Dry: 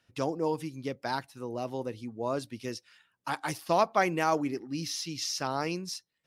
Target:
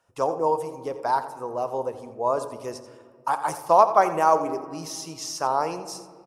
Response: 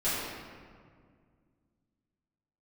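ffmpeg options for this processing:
-filter_complex "[0:a]equalizer=frequency=125:width_type=o:width=1:gain=-4,equalizer=frequency=250:width_type=o:width=1:gain=-7,equalizer=frequency=500:width_type=o:width=1:gain=6,equalizer=frequency=1000:width_type=o:width=1:gain=12,equalizer=frequency=2000:width_type=o:width=1:gain=-6,equalizer=frequency=4000:width_type=o:width=1:gain=-8,equalizer=frequency=8000:width_type=o:width=1:gain=7,aecho=1:1:86:0.211,asplit=2[link_01][link_02];[1:a]atrim=start_sample=2205,lowshelf=frequency=370:gain=7[link_03];[link_02][link_03]afir=irnorm=-1:irlink=0,volume=-23dB[link_04];[link_01][link_04]amix=inputs=2:normalize=0"

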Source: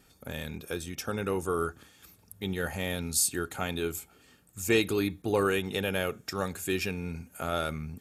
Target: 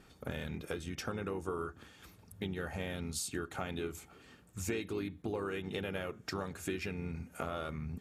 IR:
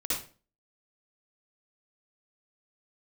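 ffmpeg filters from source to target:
-filter_complex "[0:a]aemphasis=mode=reproduction:type=50kf,acompressor=threshold=-38dB:ratio=6,asplit=2[link_01][link_02];[link_02]asetrate=37084,aresample=44100,atempo=1.18921,volume=-9dB[link_03];[link_01][link_03]amix=inputs=2:normalize=0,volume=2.5dB"

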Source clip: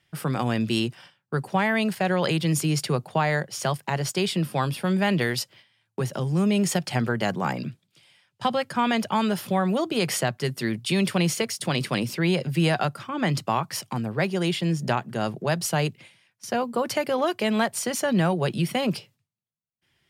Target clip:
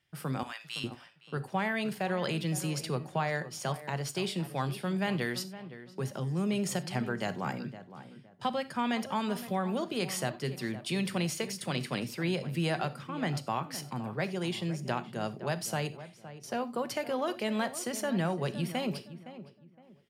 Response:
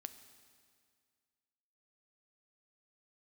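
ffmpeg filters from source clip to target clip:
-filter_complex "[0:a]asettb=1/sr,asplit=3[link_01][link_02][link_03];[link_01]atrim=end=0.434[link_04];[link_02]atrim=start=0.43:end=0.84,asetpts=PTS-STARTPTS,afade=type=in:duration=0.004:curve=qsin,afade=type=out:start_time=0.406:duration=0.004:curve=qsin,highpass=frequency=940:width=0.5412,highpass=frequency=940:width=1.3066[link_05];[link_03]atrim=start=0.836[link_06];[link_04][link_05]acrossfade=duration=0.004:curve1=hsin:curve2=qsin[link_07];[link_07][link_06]acrossfade=duration=0.004:curve1=qsin:curve2=hsin,asplit=2[link_08][link_09];[link_09]adelay=514,lowpass=frequency=1700:poles=1,volume=-13dB,asplit=2[link_10][link_11];[link_11]adelay=514,lowpass=frequency=1700:poles=1,volume=0.29,asplit=2[link_12][link_13];[link_13]adelay=514,lowpass=frequency=1700:poles=1,volume=0.29[link_14];[link_08][link_10][link_12][link_14]amix=inputs=4:normalize=0[link_15];[1:a]atrim=start_sample=2205,atrim=end_sample=4410[link_16];[link_15][link_16]afir=irnorm=-1:irlink=0,volume=-3.5dB"

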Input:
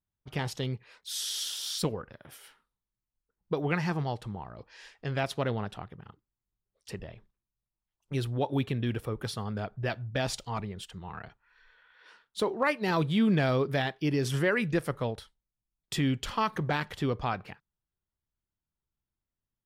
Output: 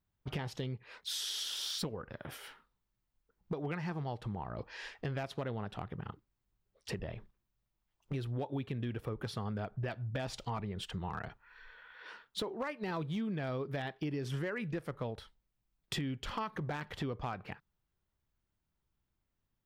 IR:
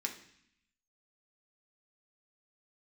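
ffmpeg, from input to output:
-af "equalizer=frequency=10000:width_type=o:width=1.9:gain=-9.5,acompressor=threshold=-42dB:ratio=8,asoftclip=type=hard:threshold=-36.5dB,volume=7dB"

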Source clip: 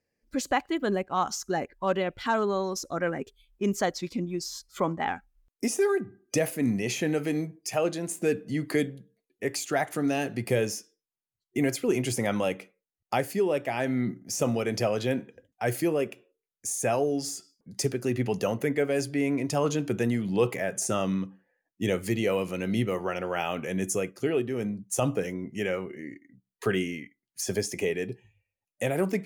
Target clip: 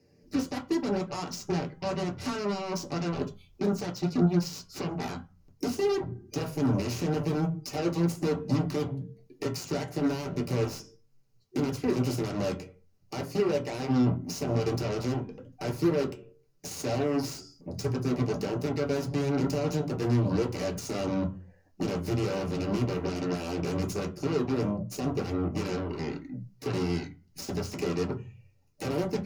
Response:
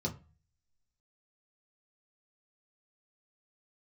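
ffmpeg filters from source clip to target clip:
-filter_complex "[0:a]asettb=1/sr,asplit=3[link_01][link_02][link_03];[link_01]atrim=end=12.434[link_04];[link_02]atrim=start=12.43:end=14.57,asetpts=PTS-STARTPTS,afade=type=in:duration=0.004:curve=qsin,afade=type=out:start_time=2.136:duration=0.004:curve=qsin,highpass=frequency=120:poles=1[link_05];[link_03]atrim=start=14.566[link_06];[link_04][link_05]acrossfade=duration=0.004:curve1=hsin:curve2=qsin[link_07];[link_07][link_06]acrossfade=duration=0.004:curve1=qsin:curve2=hsin,acompressor=threshold=-50dB:ratio=2,alimiter=level_in=10.5dB:limit=-24dB:level=0:latency=1:release=159,volume=-10.5dB,aeval=exprs='0.0188*(cos(1*acos(clip(val(0)/0.0188,-1,1)))-cos(1*PI/2))+0.0075*(cos(7*acos(clip(val(0)/0.0188,-1,1)))-cos(7*PI/2))':channel_layout=same[link_08];[1:a]atrim=start_sample=2205,asetrate=48510,aresample=44100[link_09];[link_08][link_09]afir=irnorm=-1:irlink=0,volume=5.5dB"

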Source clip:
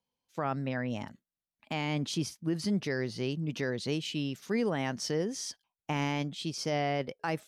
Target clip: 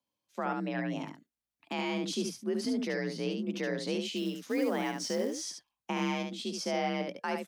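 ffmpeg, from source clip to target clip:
ffmpeg -i in.wav -filter_complex "[0:a]aecho=1:1:71:0.531,asettb=1/sr,asplit=3[link_01][link_02][link_03];[link_01]atrim=end=4.164[link_04];[link_02]atrim=start=4.16:end=5.42,asetpts=PTS-STARTPTS,afade=type=in:duration=0.004:curve=qsin,afade=type=out:start_time=1.256:duration=0.004:curve=qsin,acrusher=bits=6:mode=log:mix=0:aa=0.000001[link_05];[link_03]atrim=start=5.416[link_06];[link_04][link_05]acrossfade=duration=0.004:curve1=hsin:curve2=qsin[link_07];[link_07][link_06]acrossfade=duration=0.004:curve1=qsin:curve2=hsin,afreqshift=50,volume=-1.5dB" out.wav

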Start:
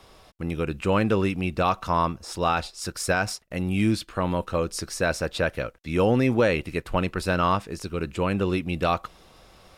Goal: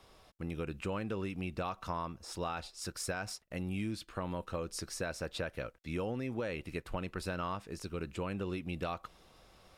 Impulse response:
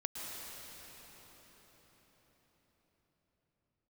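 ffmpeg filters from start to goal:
-af "acompressor=threshold=-25dB:ratio=6,volume=-8.5dB"

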